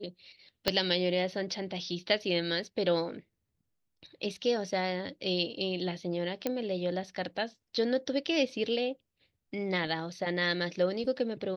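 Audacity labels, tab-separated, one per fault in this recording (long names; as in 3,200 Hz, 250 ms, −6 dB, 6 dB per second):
0.680000	0.680000	click −10 dBFS
6.470000	6.470000	click −16 dBFS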